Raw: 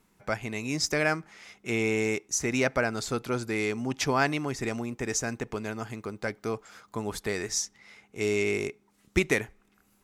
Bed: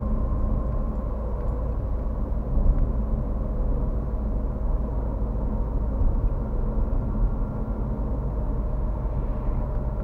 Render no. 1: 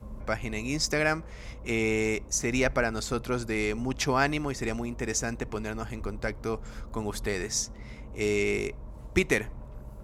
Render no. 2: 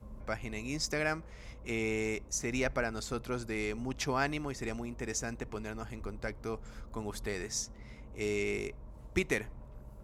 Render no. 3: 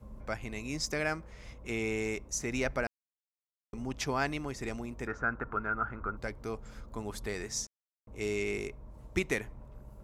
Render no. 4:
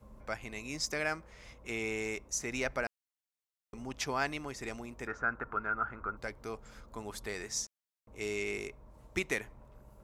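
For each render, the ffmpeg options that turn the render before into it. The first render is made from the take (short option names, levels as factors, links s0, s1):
-filter_complex "[1:a]volume=0.158[s0];[0:a][s0]amix=inputs=2:normalize=0"
-af "volume=0.473"
-filter_complex "[0:a]asettb=1/sr,asplit=3[s0][s1][s2];[s0]atrim=end=5.074[s3];[s1]atrim=start=5.07:end=6.17,asetpts=PTS-STARTPTS,afade=t=in:d=0.004:c=qsin,afade=t=out:st=1.096:d=0.004:c=qsin,lowpass=f=1400:t=q:w=14[s4];[s2]atrim=start=6.166[s5];[s3][s4]acrossfade=d=0.004:c1=hsin:c2=qsin[s6];[s6][s5]acrossfade=d=0.004:c1=qsin:c2=hsin,asplit=5[s7][s8][s9][s10][s11];[s7]atrim=end=2.87,asetpts=PTS-STARTPTS,afade=t=out:st=2.866:d=0.004:c=hsin[s12];[s8]atrim=start=2.87:end=3.73,asetpts=PTS-STARTPTS,volume=0[s13];[s9]atrim=start=3.73:end=7.67,asetpts=PTS-STARTPTS,afade=t=in:d=0.004:c=hsin,afade=t=out:st=3.936:d=0.004:c=hsin[s14];[s10]atrim=start=7.67:end=8.07,asetpts=PTS-STARTPTS,volume=0[s15];[s11]atrim=start=8.07,asetpts=PTS-STARTPTS,afade=t=in:d=0.004:c=hsin[s16];[s12][s13][s14][s15][s16]concat=n=5:v=0:a=1"
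-af "lowshelf=f=370:g=-7.5"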